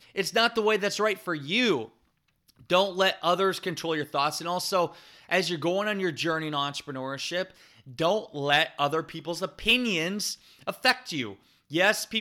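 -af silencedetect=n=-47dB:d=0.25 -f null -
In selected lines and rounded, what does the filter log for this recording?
silence_start: 1.89
silence_end: 2.49 | silence_duration: 0.60
silence_start: 11.36
silence_end: 11.70 | silence_duration: 0.35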